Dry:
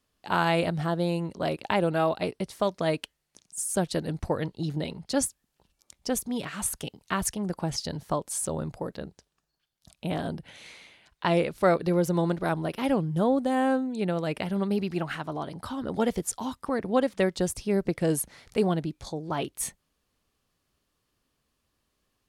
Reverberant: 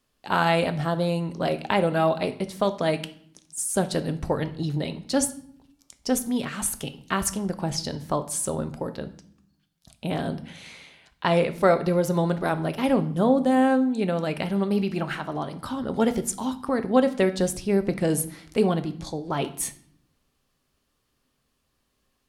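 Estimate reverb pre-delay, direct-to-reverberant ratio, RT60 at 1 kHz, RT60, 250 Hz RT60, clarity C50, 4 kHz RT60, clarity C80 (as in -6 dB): 4 ms, 9.0 dB, 0.60 s, 0.65 s, 1.1 s, 14.5 dB, 0.50 s, 18.0 dB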